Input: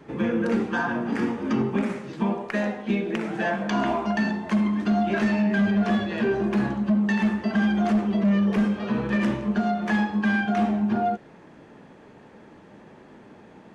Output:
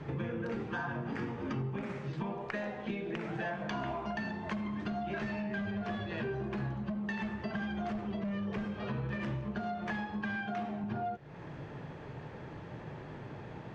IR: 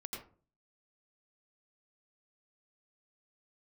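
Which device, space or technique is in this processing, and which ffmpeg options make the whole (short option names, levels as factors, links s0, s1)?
jukebox: -filter_complex "[0:a]lowpass=5200,lowshelf=f=170:t=q:w=3:g=6,acompressor=threshold=0.0112:ratio=4,asettb=1/sr,asplit=3[s0][s1][s2];[s0]atrim=end=10.374[s3];[s1]atrim=start=10.37:end=10.84,asetpts=PTS-STARTPTS,afade=t=in:d=0.004:c=qsin,afade=t=out:st=0.466:d=0.004:c=qsin,highpass=130[s4];[s2]atrim=start=10.836[s5];[s3][s4]acrossfade=d=0.004:c1=hsin:c2=qsin[s6];[s6][s5]acrossfade=d=0.004:c1=qsin:c2=hsin,volume=1.33"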